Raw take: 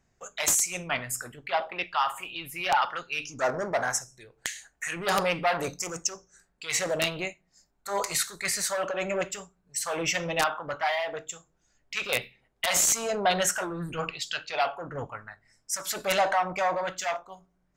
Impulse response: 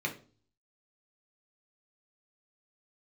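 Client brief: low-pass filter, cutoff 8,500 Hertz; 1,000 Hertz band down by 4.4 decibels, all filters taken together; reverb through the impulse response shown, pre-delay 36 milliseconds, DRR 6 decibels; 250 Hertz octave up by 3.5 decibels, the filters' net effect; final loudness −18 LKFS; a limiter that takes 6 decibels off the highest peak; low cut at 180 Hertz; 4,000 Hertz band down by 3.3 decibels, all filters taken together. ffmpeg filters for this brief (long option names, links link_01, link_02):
-filter_complex "[0:a]highpass=180,lowpass=8500,equalizer=frequency=250:width_type=o:gain=8.5,equalizer=frequency=1000:width_type=o:gain=-7,equalizer=frequency=4000:width_type=o:gain=-4,alimiter=limit=-21dB:level=0:latency=1,asplit=2[link_01][link_02];[1:a]atrim=start_sample=2205,adelay=36[link_03];[link_02][link_03]afir=irnorm=-1:irlink=0,volume=-11.5dB[link_04];[link_01][link_04]amix=inputs=2:normalize=0,volume=13.5dB"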